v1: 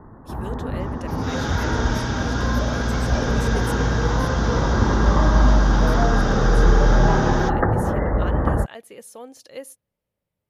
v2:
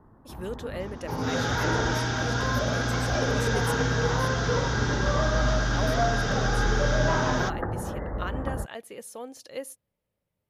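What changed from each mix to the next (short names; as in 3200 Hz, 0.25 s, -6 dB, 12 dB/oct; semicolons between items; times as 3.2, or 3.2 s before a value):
first sound -11.5 dB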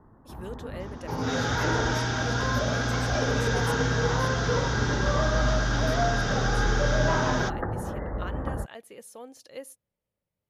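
speech -4.5 dB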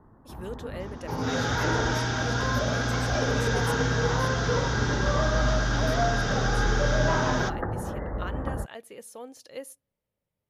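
speech: send on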